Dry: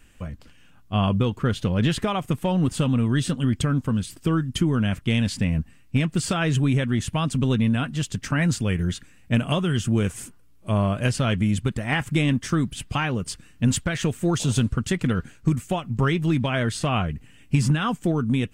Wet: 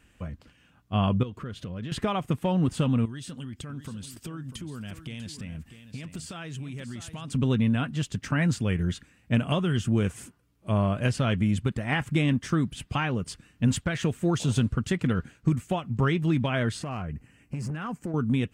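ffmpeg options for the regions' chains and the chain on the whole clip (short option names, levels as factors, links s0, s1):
-filter_complex "[0:a]asettb=1/sr,asplit=3[s0][s1][s2];[s0]atrim=end=1.234[s3];[s1]atrim=start=1.23:end=1.92,asetpts=PTS-STARTPTS,afade=t=in:d=0.004:c=qsin,afade=t=out:st=0.686:d=0.004:c=qsin,acompressor=threshold=0.0224:ratio=3:attack=3.2:release=140:knee=1:detection=peak,asuperstop=centerf=850:order=4:qfactor=7[s4];[s2]atrim=start=1.916[s5];[s3][s4]acrossfade=d=0.004:c1=hsin:c2=qsin[s6];[s6][s5]acrossfade=d=0.004:c1=qsin:c2=hsin,asettb=1/sr,asplit=3[s7][s8][s9];[s7]atrim=end=3.054[s10];[s8]atrim=start=3.05:end=7.32,asetpts=PTS-STARTPTS,afade=t=in:d=0.004:c=qsin,afade=t=out:st=4.266:d=0.004:c=qsin,highshelf=f=3000:g=10,acompressor=threshold=0.0282:ratio=12:attack=3.2:release=140:knee=1:detection=peak,aecho=1:1:645:0.266,atrim=end_sample=188307[s11];[s9]atrim=start=7.316[s12];[s10][s11]acrossfade=d=0.004:c1=hsin:c2=qsin[s13];[s13][s12]acrossfade=d=0.004:c1=qsin:c2=hsin,asettb=1/sr,asplit=3[s14][s15][s16];[s14]atrim=end=16.824[s17];[s15]atrim=start=16.82:end=18.14,asetpts=PTS-STARTPTS,afade=t=in:d=0.004:c=qsin,afade=t=out:st=1.316:d=0.004:c=qsin,aeval=exprs='clip(val(0),-1,0.1)':c=same,acompressor=threshold=0.0447:ratio=4:attack=3.2:release=140:knee=1:detection=peak,equalizer=f=3500:t=o:w=0.38:g=-14[s18];[s16]atrim=start=18.136[s19];[s17][s18]acrossfade=d=0.004:c1=hsin:c2=qsin[s20];[s20][s19]acrossfade=d=0.004:c1=qsin:c2=hsin,highpass=42,highshelf=f=4800:g=-6.5,volume=0.75"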